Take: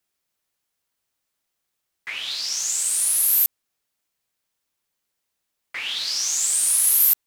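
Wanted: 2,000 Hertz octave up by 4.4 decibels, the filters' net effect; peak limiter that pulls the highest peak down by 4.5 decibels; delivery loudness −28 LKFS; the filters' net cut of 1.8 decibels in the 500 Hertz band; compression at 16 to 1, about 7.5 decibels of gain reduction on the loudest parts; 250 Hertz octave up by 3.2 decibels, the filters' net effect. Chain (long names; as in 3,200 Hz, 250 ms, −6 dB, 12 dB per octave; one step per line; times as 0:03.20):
parametric band 250 Hz +5.5 dB
parametric band 500 Hz −4 dB
parametric band 2,000 Hz +5.5 dB
downward compressor 16 to 1, threshold −20 dBFS
level −4 dB
brickwall limiter −20 dBFS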